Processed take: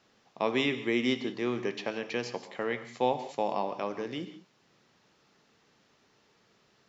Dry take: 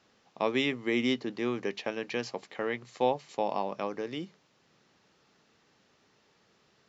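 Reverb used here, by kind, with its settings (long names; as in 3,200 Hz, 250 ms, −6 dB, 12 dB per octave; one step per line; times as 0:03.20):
reverb whose tail is shaped and stops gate 210 ms flat, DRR 9.5 dB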